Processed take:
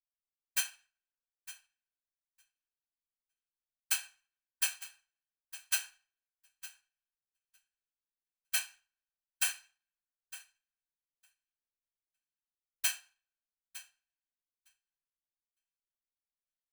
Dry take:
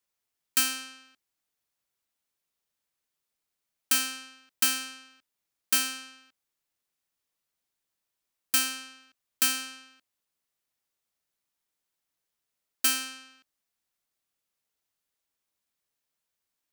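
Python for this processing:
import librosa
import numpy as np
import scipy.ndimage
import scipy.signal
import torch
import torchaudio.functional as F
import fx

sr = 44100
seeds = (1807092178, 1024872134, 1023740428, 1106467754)

p1 = scipy.signal.sosfilt(scipy.signal.butter(4, 650.0, 'highpass', fs=sr, output='sos'), x)
p2 = p1 + 0.75 * np.pad(p1, (int(1.2 * sr / 1000.0), 0))[:len(p1)]
p3 = fx.whisperise(p2, sr, seeds[0])
p4 = fx.dmg_noise_colour(p3, sr, seeds[1], colour='brown', level_db=-66.0)
p5 = p4 + fx.echo_feedback(p4, sr, ms=908, feedback_pct=36, wet_db=-6.5, dry=0)
p6 = fx.rev_plate(p5, sr, seeds[2], rt60_s=1.6, hf_ratio=0.5, predelay_ms=0, drr_db=11.0)
p7 = fx.upward_expand(p6, sr, threshold_db=-47.0, expansion=2.5)
y = F.gain(torch.from_numpy(p7), -6.5).numpy()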